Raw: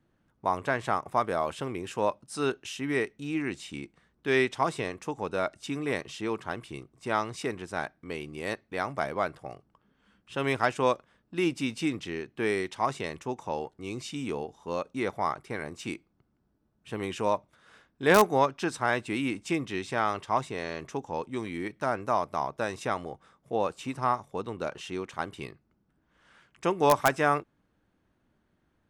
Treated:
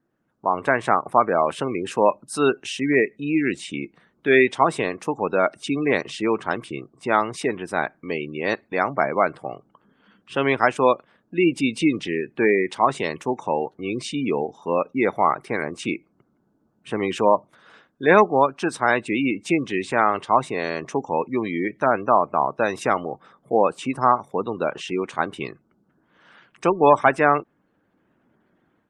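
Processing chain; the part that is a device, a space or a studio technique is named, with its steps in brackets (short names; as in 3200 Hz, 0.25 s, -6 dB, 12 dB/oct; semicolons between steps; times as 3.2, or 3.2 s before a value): noise-suppressed video call (HPF 160 Hz 12 dB/oct; spectral gate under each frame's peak -25 dB strong; AGC gain up to 10.5 dB; Opus 32 kbps 48000 Hz)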